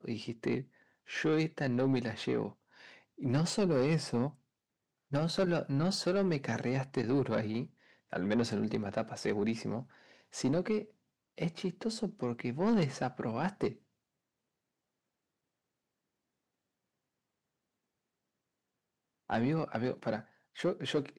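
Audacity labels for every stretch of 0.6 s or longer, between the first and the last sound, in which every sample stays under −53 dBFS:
4.350000	5.110000	silence
13.760000	19.290000	silence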